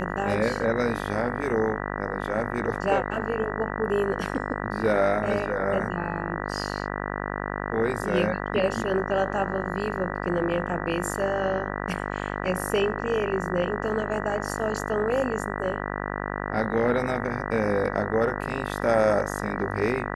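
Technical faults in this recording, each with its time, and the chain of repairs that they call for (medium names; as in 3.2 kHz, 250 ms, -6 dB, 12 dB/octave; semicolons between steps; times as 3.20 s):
buzz 50 Hz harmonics 39 -31 dBFS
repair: de-hum 50 Hz, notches 39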